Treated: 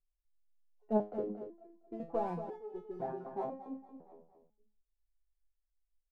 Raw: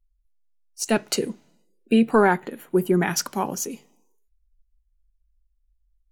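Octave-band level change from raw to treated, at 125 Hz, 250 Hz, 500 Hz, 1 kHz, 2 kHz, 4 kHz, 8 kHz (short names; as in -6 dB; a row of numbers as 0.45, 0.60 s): -18.5 dB, -18.0 dB, -13.5 dB, -15.0 dB, -32.5 dB, under -40 dB, under -40 dB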